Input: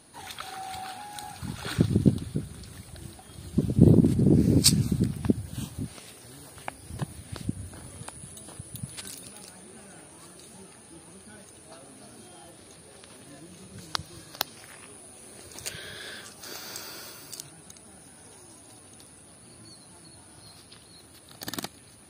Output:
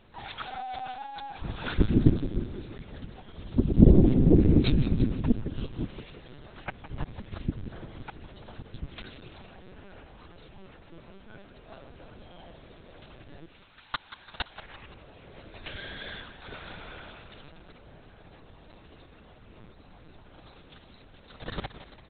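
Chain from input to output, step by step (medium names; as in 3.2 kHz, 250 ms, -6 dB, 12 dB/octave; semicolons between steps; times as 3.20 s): 13.45–14.56 s: high-pass 1.1 kHz -> 470 Hz 24 dB/octave; frequency-shifting echo 171 ms, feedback 46%, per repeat +48 Hz, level -12.5 dB; LPC vocoder at 8 kHz pitch kept; trim +1.5 dB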